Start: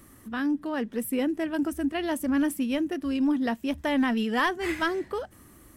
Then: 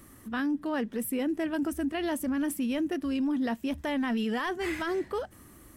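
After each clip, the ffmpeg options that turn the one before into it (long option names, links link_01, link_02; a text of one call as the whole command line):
ffmpeg -i in.wav -af "alimiter=limit=-23.5dB:level=0:latency=1:release=18" out.wav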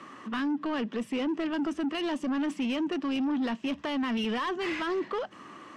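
ffmpeg -i in.wav -filter_complex "[0:a]acrossover=split=400|3000[link_01][link_02][link_03];[link_02]acompressor=threshold=-47dB:ratio=2[link_04];[link_01][link_04][link_03]amix=inputs=3:normalize=0,highpass=170,equalizer=frequency=180:width_type=q:width=4:gain=5,equalizer=frequency=1100:width_type=q:width=4:gain=8,equalizer=frequency=2800:width_type=q:width=4:gain=7,lowpass=frequency=6600:width=0.5412,lowpass=frequency=6600:width=1.3066,asplit=2[link_05][link_06];[link_06]highpass=frequency=720:poles=1,volume=18dB,asoftclip=type=tanh:threshold=-22dB[link_07];[link_05][link_07]amix=inputs=2:normalize=0,lowpass=frequency=1900:poles=1,volume=-6dB" out.wav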